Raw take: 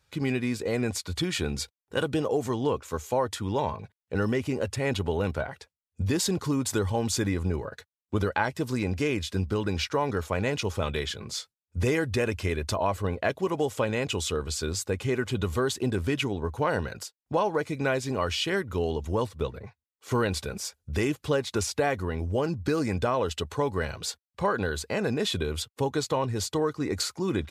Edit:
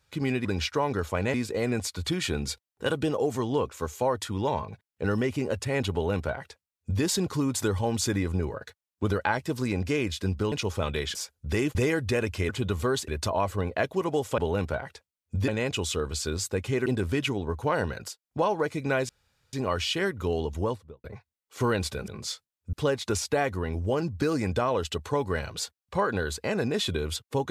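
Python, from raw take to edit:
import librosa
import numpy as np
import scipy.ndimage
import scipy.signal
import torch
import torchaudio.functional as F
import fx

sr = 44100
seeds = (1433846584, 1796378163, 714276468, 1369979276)

y = fx.studio_fade_out(x, sr, start_s=19.07, length_s=0.48)
y = fx.edit(y, sr, fx.duplicate(start_s=5.04, length_s=1.1, to_s=13.84),
    fx.move(start_s=9.63, length_s=0.89, to_s=0.45),
    fx.swap(start_s=11.15, length_s=0.65, other_s=20.59, other_length_s=0.6),
    fx.move(start_s=15.22, length_s=0.59, to_s=12.54),
    fx.insert_room_tone(at_s=18.04, length_s=0.44), tone=tone)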